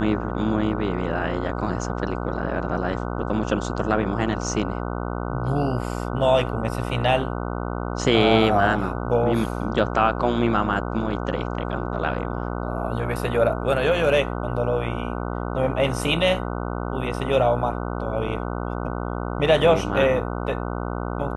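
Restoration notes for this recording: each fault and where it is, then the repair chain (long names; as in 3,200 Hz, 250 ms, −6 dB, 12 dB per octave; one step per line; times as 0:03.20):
mains buzz 60 Hz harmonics 25 −28 dBFS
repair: hum removal 60 Hz, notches 25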